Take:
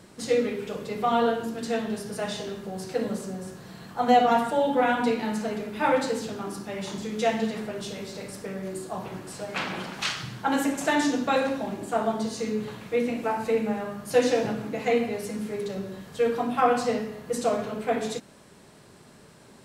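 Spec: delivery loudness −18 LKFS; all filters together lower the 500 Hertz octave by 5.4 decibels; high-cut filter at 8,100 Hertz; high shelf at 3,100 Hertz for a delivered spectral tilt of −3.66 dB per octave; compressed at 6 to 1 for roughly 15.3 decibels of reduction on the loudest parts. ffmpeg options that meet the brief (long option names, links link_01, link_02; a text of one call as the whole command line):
ffmpeg -i in.wav -af "lowpass=8100,equalizer=frequency=500:width_type=o:gain=-6.5,highshelf=frequency=3100:gain=7,acompressor=threshold=-34dB:ratio=6,volume=19.5dB" out.wav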